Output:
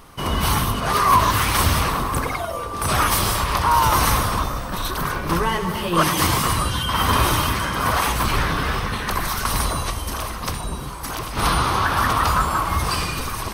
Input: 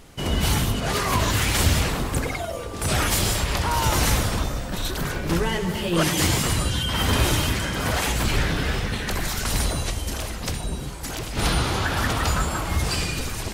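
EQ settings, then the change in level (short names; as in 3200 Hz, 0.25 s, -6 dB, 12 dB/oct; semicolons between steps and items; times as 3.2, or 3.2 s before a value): bell 1100 Hz +13.5 dB 0.58 oct; high shelf 11000 Hz +7.5 dB; notch 7200 Hz, Q 5; 0.0 dB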